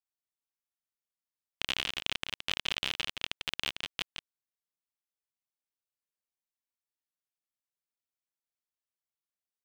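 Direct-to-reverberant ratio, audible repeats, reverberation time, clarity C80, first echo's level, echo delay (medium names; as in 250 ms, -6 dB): no reverb, 1, no reverb, no reverb, -7.0 dB, 170 ms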